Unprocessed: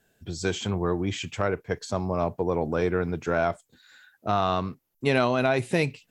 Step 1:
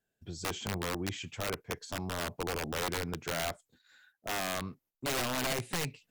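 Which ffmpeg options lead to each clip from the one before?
-af "agate=range=-10dB:threshold=-56dB:ratio=16:detection=peak,aeval=exprs='(mod(8.41*val(0)+1,2)-1)/8.41':c=same,volume=-8dB"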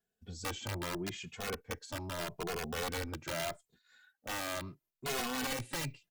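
-filter_complex "[0:a]asplit=2[a][b];[b]adelay=2.4,afreqshift=0.79[c];[a][c]amix=inputs=2:normalize=1"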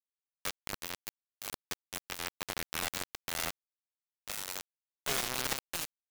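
-af "acrusher=bits=4:mix=0:aa=0.000001,volume=3.5dB"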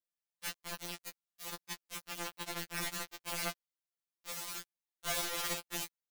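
-af "afftfilt=real='re*2.83*eq(mod(b,8),0)':imag='im*2.83*eq(mod(b,8),0)':win_size=2048:overlap=0.75"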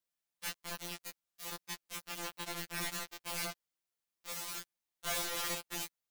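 -af "asoftclip=type=hard:threshold=-33.5dB,volume=3dB"

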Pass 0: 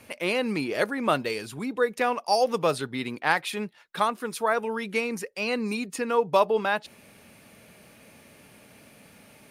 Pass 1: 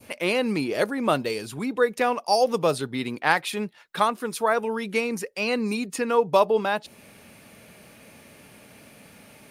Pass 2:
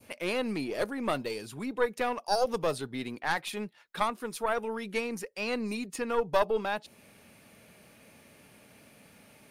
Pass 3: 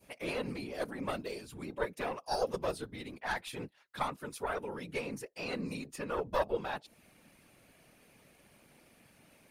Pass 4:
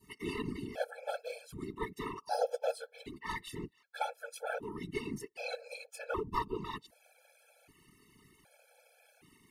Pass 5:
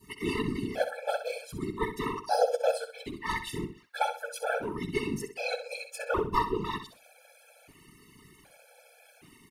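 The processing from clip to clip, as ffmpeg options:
-af "adynamicequalizer=threshold=0.01:dfrequency=1800:dqfactor=0.76:tfrequency=1800:tqfactor=0.76:attack=5:release=100:ratio=0.375:range=3:mode=cutabove:tftype=bell,volume=3dB"
-af "aeval=exprs='(tanh(2.82*val(0)+0.75)-tanh(0.75))/2.82':c=same,volume=-2.5dB"
-af "afftfilt=real='hypot(re,im)*cos(2*PI*random(0))':imag='hypot(re,im)*sin(2*PI*random(1))':win_size=512:overlap=0.75"
-af "afftfilt=real='hypot(re,im)*cos(2*PI*random(0))':imag='hypot(re,im)*sin(2*PI*random(1))':win_size=512:overlap=0.75,afftfilt=real='re*gt(sin(2*PI*0.65*pts/sr)*(1-2*mod(floor(b*sr/1024/440),2)),0)':imag='im*gt(sin(2*PI*0.65*pts/sr)*(1-2*mod(floor(b*sr/1024/440),2)),0)':win_size=1024:overlap=0.75,volume=5.5dB"
-af "aecho=1:1:64|128|192:0.316|0.0885|0.0248,volume=7dB"

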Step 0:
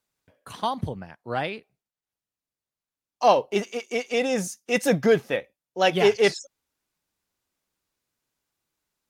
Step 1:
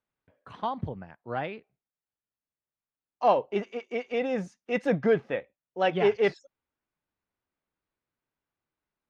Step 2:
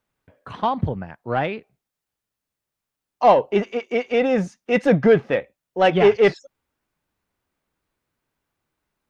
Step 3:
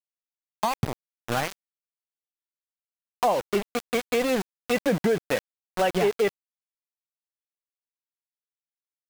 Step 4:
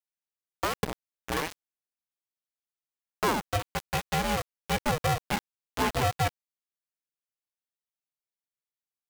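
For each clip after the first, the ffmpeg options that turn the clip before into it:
-af "lowpass=2.3k,volume=-4dB"
-filter_complex "[0:a]asplit=2[a][b];[b]asoftclip=type=tanh:threshold=-24dB,volume=-5dB[c];[a][c]amix=inputs=2:normalize=0,lowshelf=f=130:g=3.5,volume=6dB"
-af "aeval=exprs='val(0)*gte(abs(val(0)),0.1)':c=same,acompressor=threshold=-21dB:ratio=4"
-af "aeval=exprs='val(0)*sgn(sin(2*PI*310*n/s))':c=same,volume=-4dB"

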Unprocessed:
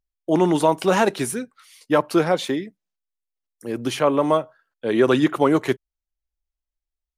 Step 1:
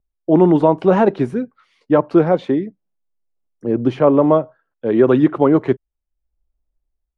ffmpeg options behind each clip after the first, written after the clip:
-filter_complex "[0:a]lowpass=3.9k,tiltshelf=f=1.4k:g=9.5,acrossover=split=920[a][b];[a]dynaudnorm=f=190:g=5:m=8dB[c];[c][b]amix=inputs=2:normalize=0,volume=-1.5dB"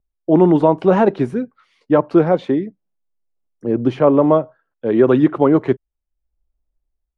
-af anull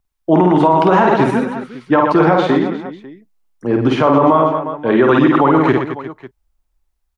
-af "lowshelf=f=710:t=q:w=1.5:g=-7,aecho=1:1:50|120|218|355.2|547.3:0.631|0.398|0.251|0.158|0.1,alimiter=level_in=11.5dB:limit=-1dB:release=50:level=0:latency=1,volume=-1.5dB"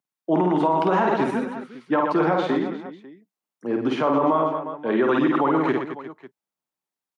-af "highpass=f=160:w=0.5412,highpass=f=160:w=1.3066,volume=-8.5dB"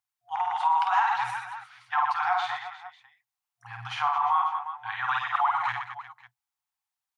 -af "afftfilt=real='re*(1-between(b*sr/4096,120,710))':imag='im*(1-between(b*sr/4096,120,710))':win_size=4096:overlap=0.75"

